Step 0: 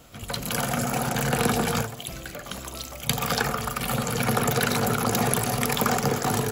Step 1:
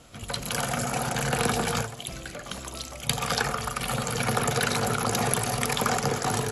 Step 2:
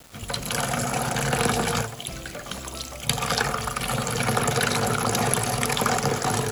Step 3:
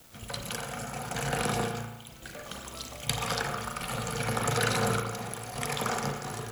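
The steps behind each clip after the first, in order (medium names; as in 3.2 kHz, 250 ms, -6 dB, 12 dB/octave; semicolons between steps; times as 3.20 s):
dynamic bell 240 Hz, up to -4 dB, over -38 dBFS, Q 0.99; elliptic low-pass 11 kHz, stop band 80 dB
word length cut 8-bit, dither none; trim +2.5 dB
random-step tremolo 1.8 Hz, depth 70%; added noise blue -54 dBFS; reverberation RT60 1.0 s, pre-delay 35 ms, DRR 4 dB; trim -5.5 dB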